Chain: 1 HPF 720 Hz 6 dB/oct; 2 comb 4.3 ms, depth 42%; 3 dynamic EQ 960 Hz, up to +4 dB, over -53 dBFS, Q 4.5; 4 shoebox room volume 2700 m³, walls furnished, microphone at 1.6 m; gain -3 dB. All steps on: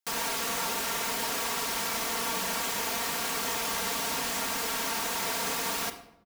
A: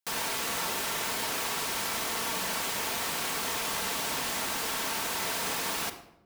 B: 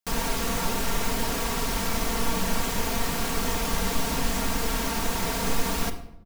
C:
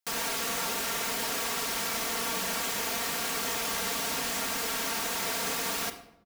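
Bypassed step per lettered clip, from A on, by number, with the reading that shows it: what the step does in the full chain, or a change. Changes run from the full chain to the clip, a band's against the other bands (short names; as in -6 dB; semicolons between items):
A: 2, 125 Hz band +1.5 dB; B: 1, 125 Hz band +14.0 dB; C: 3, 1 kHz band -2.0 dB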